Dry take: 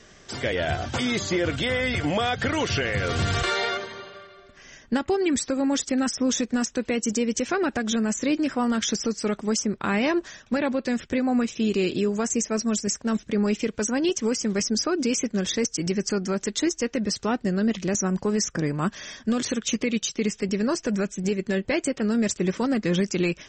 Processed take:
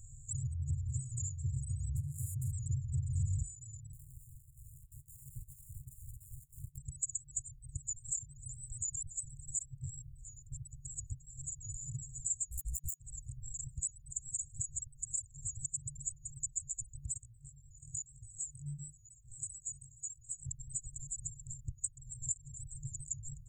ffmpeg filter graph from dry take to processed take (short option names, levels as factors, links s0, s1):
-filter_complex "[0:a]asettb=1/sr,asplit=3[s0][s1][s2];[s0]atrim=end=1.964[s3];[s1]atrim=start=1.96:end=2.52,asetpts=PTS-STARTPTS,afade=t=in:d=0.004:c=qsin,afade=t=out:st=0.556:d=0.004:c=qsin,bass=f=250:g=2,treble=f=4000:g=-9,adynamicsmooth=sensitivity=8:basefreq=910,highpass=110[s4];[s2]atrim=start=2.516[s5];[s3][s4]acrossfade=d=0.004:c1=hsin:c2=qsin[s6];[s6][s5]acrossfade=d=0.004:c1=qsin:c2=hsin,asettb=1/sr,asplit=3[s7][s8][s9];[s7]atrim=end=3.934[s10];[s8]atrim=start=3.93:end=6.78,asetpts=PTS-STARTPTS,afade=t=in:d=0.004:c=qsin,afade=t=out:st=2.846:d=0.004:c=qsin,highpass=f=1400:p=1,acompressor=threshold=0.00398:ratio=4:attack=3.2:release=140:knee=1:detection=peak,acrusher=samples=40:mix=1:aa=0.000001:lfo=1:lforange=24:lforate=2.3[s11];[s9]atrim=start=6.776[s12];[s10][s11]acrossfade=d=0.004:c1=hsin:c2=qsin[s13];[s13][s12]acrossfade=d=0.004:c1=qsin:c2=hsin,asettb=1/sr,asplit=3[s14][s15][s16];[s14]atrim=end=12.514[s17];[s15]atrim=start=12.51:end=13,asetpts=PTS-STARTPTS,afade=t=in:d=0.004:c=qsin,afade=t=out:st=0.486:d=0.004:c=qsin,acrossover=split=6700[s18][s19];[s19]acompressor=threshold=0.0141:ratio=4:attack=1:release=60[s20];[s18][s20]amix=inputs=2:normalize=0,acrusher=bits=3:mix=0:aa=0.5,tremolo=f=280:d=0.667[s21];[s16]atrim=start=12.996[s22];[s17][s21]acrossfade=d=0.004:c1=hsin:c2=qsin[s23];[s23][s22]acrossfade=d=0.004:c1=qsin:c2=hsin,asettb=1/sr,asplit=3[s24][s25][s26];[s24]atrim=end=17.194[s27];[s25]atrim=start=17.19:end=20.47,asetpts=PTS-STARTPTS,afade=t=in:d=0.004:c=qsin,afade=t=out:st=3.276:d=0.004:c=qsin,bandreject=f=7200:w=8.7,flanger=delay=17.5:depth=5:speed=1,lowshelf=f=210:g=-9.5[s28];[s26]atrim=start=20.466[s29];[s27][s28]acrossfade=d=0.004:c1=hsin:c2=qsin[s30];[s30][s29]acrossfade=d=0.004:c1=qsin:c2=hsin,afftfilt=real='re*(1-between(b*sr/4096,150,6800))':imag='im*(1-between(b*sr/4096,150,6800))':win_size=4096:overlap=0.75,acompressor=threshold=0.00562:ratio=2.5,volume=2.24"